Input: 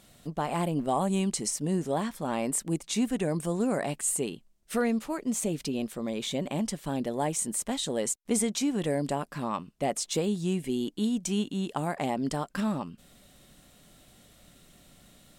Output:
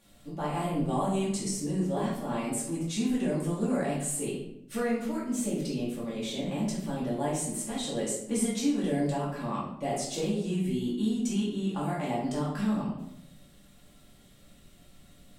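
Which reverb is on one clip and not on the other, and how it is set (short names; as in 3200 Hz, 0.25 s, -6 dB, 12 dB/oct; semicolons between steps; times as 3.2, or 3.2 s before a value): shoebox room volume 200 m³, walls mixed, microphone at 2.4 m; gain -10 dB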